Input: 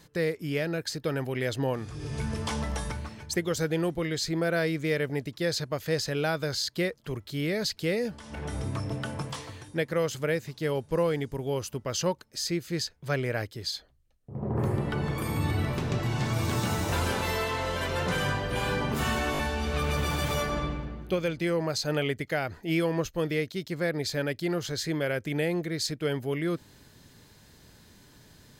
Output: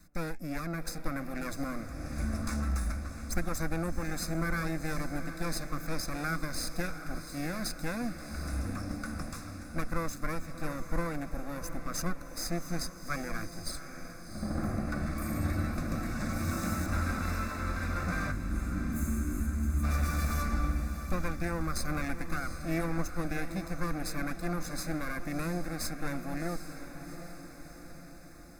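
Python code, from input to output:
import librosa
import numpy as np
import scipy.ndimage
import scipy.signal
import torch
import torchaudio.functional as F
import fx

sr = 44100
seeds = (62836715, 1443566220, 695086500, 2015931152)

y = fx.lower_of_two(x, sr, delay_ms=0.79)
y = fx.high_shelf(y, sr, hz=5500.0, db=-9.0, at=(16.86, 18.89))
y = fx.spec_box(y, sr, start_s=18.32, length_s=1.52, low_hz=400.0, high_hz=6200.0, gain_db=-18)
y = fx.low_shelf(y, sr, hz=110.0, db=10.5)
y = fx.fixed_phaser(y, sr, hz=620.0, stages=8)
y = fx.echo_diffused(y, sr, ms=739, feedback_pct=59, wet_db=-10.0)
y = F.gain(torch.from_numpy(y), -1.0).numpy()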